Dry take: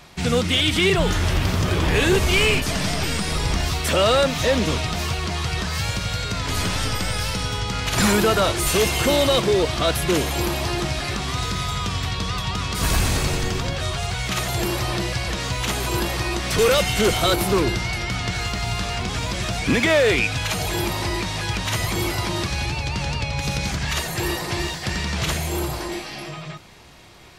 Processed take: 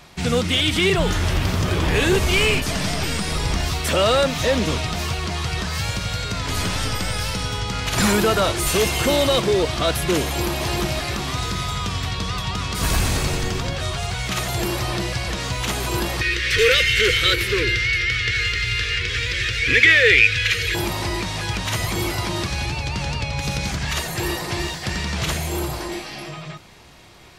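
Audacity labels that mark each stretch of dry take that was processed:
10.240000	10.640000	echo throw 360 ms, feedback 45%, level -5 dB
16.210000	20.750000	FFT filter 110 Hz 0 dB, 200 Hz -17 dB, 490 Hz +2 dB, 710 Hz -29 dB, 1.8 kHz +11 dB, 3 kHz +7 dB, 5.7 kHz 0 dB, 9.1 kHz -6 dB

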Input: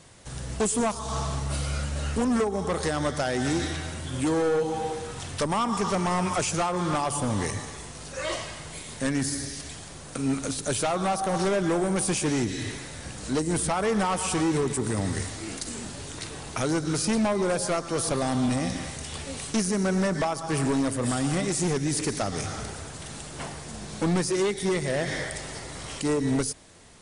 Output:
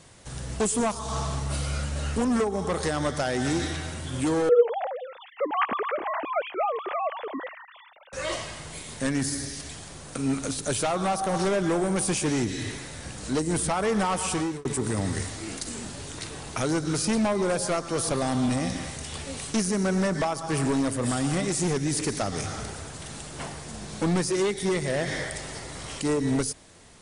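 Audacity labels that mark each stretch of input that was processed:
4.490000	8.130000	formants replaced by sine waves
14.210000	14.650000	fade out equal-power

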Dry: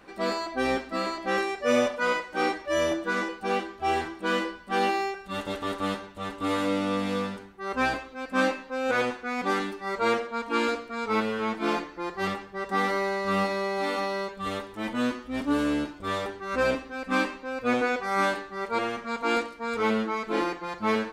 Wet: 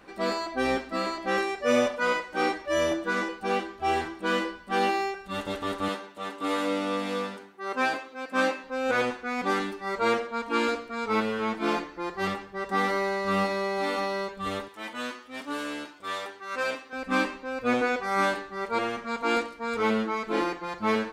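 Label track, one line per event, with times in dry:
5.880000	8.640000	high-pass 260 Hz
14.680000	16.930000	high-pass 1 kHz 6 dB/octave

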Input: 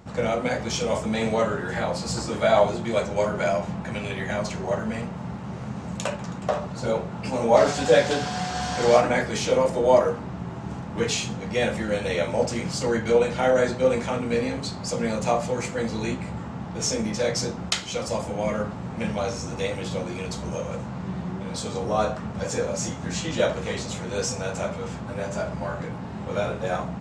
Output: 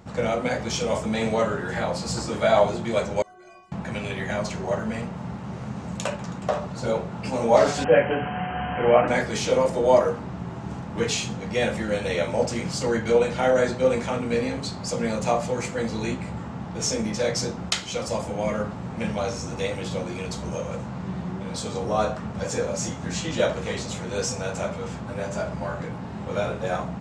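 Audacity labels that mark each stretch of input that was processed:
3.220000	3.720000	inharmonic resonator 360 Hz, decay 0.57 s, inharmonicity 0.008
7.840000	9.080000	brick-wall FIR low-pass 3.2 kHz

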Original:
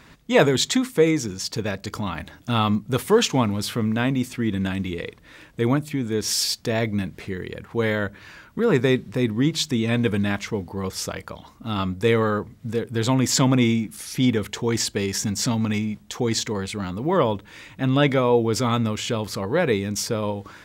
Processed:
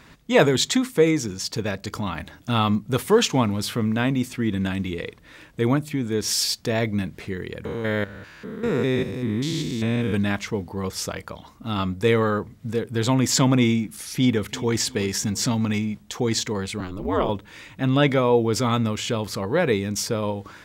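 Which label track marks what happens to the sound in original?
7.650000	10.140000	spectrogram pixelated in time every 200 ms
14.140000	14.790000	echo throw 340 ms, feedback 40%, level -17.5 dB
16.800000	17.290000	ring modulator 94 Hz

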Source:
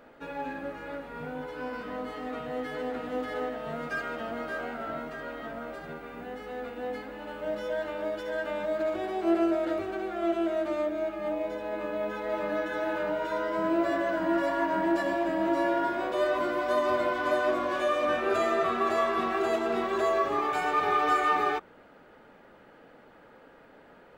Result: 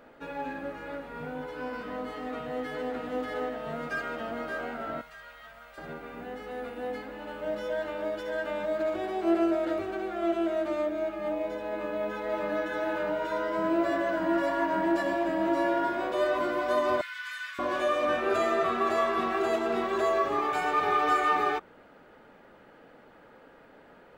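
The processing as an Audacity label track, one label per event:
5.010000	5.780000	amplifier tone stack bass-middle-treble 10-0-10
6.510000	6.920000	peaking EQ 9.8 kHz +8.5 dB 0.27 oct
17.010000	17.590000	steep high-pass 1.5 kHz

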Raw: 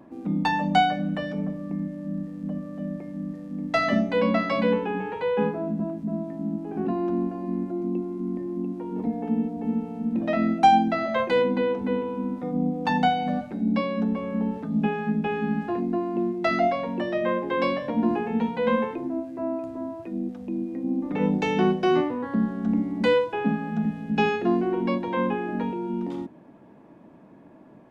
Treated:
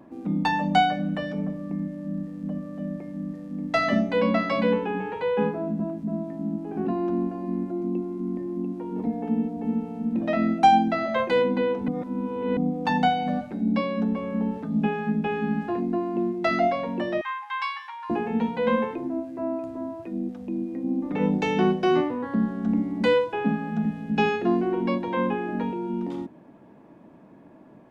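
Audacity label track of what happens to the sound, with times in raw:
11.880000	12.570000	reverse
17.210000	18.100000	brick-wall FIR high-pass 790 Hz

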